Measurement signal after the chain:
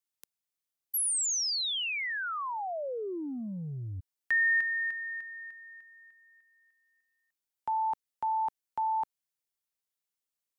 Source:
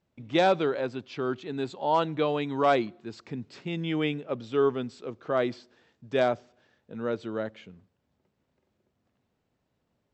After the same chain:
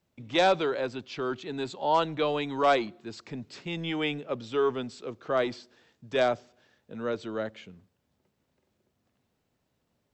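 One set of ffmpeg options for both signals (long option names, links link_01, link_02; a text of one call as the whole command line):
ffmpeg -i in.wav -filter_complex "[0:a]highshelf=frequency=3700:gain=6.5,acrossover=split=380|950[link_01][link_02][link_03];[link_01]asoftclip=type=tanh:threshold=-33dB[link_04];[link_04][link_02][link_03]amix=inputs=3:normalize=0" out.wav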